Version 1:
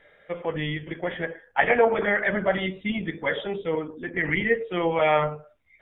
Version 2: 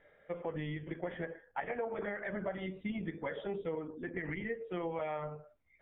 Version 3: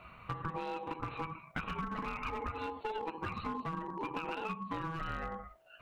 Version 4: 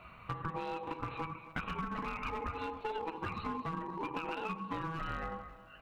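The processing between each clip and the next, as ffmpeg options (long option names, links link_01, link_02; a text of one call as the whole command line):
ffmpeg -i in.wav -af "acompressor=threshold=-27dB:ratio=10,lowpass=frequency=1300:poles=1,volume=-5.5dB" out.wav
ffmpeg -i in.wav -af "aeval=exprs='val(0)*sin(2*PI*650*n/s)':channel_layout=same,acompressor=threshold=-50dB:ratio=4,aeval=exprs='clip(val(0),-1,0.00447)':channel_layout=same,volume=14dB" out.wav
ffmpeg -i in.wav -af "aecho=1:1:269|538|807|1076|1345:0.15|0.0778|0.0405|0.021|0.0109" out.wav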